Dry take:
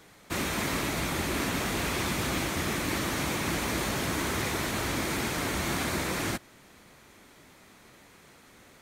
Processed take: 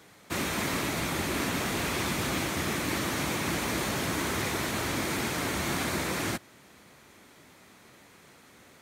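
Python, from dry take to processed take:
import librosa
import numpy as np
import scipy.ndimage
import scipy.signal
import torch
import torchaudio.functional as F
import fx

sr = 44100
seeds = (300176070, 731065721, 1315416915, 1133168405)

y = scipy.signal.sosfilt(scipy.signal.butter(2, 70.0, 'highpass', fs=sr, output='sos'), x)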